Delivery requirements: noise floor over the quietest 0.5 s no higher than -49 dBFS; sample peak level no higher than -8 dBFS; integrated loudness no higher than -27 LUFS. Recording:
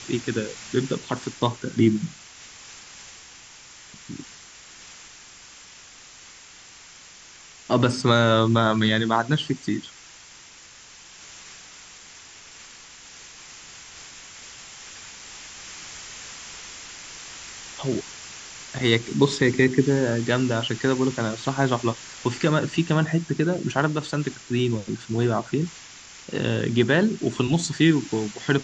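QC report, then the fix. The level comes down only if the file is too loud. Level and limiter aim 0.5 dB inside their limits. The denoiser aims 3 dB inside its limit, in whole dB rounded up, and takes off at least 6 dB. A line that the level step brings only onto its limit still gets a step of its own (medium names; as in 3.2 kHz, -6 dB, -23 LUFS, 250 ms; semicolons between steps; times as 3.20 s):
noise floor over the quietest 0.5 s -47 dBFS: fail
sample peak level -4.5 dBFS: fail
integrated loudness -23.5 LUFS: fail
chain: trim -4 dB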